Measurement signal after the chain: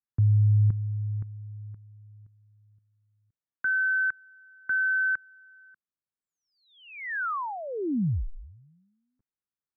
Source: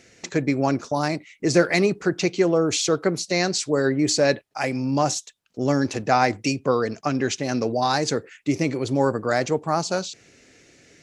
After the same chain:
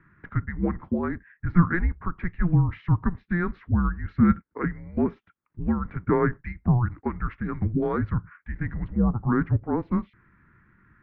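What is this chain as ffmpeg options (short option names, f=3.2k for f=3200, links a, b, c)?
-af "equalizer=f=125:t=o:w=1:g=-7,equalizer=f=250:t=o:w=1:g=-6,equalizer=f=500:t=o:w=1:g=5,equalizer=f=1k:t=o:w=1:g=-12,highpass=f=420:t=q:w=0.5412,highpass=f=420:t=q:w=1.307,lowpass=f=2k:t=q:w=0.5176,lowpass=f=2k:t=q:w=0.7071,lowpass=f=2k:t=q:w=1.932,afreqshift=-350,volume=2.5dB"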